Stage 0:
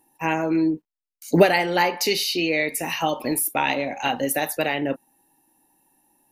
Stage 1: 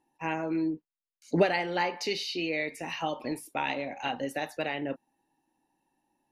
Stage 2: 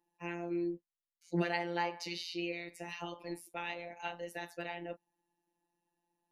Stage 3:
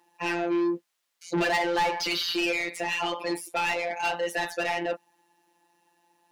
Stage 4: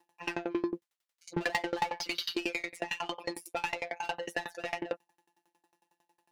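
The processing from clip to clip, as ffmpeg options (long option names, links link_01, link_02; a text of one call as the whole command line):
ffmpeg -i in.wav -af "lowpass=5400,volume=-8.5dB" out.wav
ffmpeg -i in.wav -af "afftfilt=real='hypot(re,im)*cos(PI*b)':imag='0':win_size=1024:overlap=0.75,volume=-4.5dB" out.wav
ffmpeg -i in.wav -filter_complex "[0:a]asplit=2[link_01][link_02];[link_02]highpass=frequency=720:poles=1,volume=27dB,asoftclip=type=tanh:threshold=-16.5dB[link_03];[link_01][link_03]amix=inputs=2:normalize=0,lowpass=frequency=6100:poles=1,volume=-6dB" out.wav
ffmpeg -i in.wav -af "aeval=exprs='val(0)*pow(10,-26*if(lt(mod(11*n/s,1),2*abs(11)/1000),1-mod(11*n/s,1)/(2*abs(11)/1000),(mod(11*n/s,1)-2*abs(11)/1000)/(1-2*abs(11)/1000))/20)':channel_layout=same" out.wav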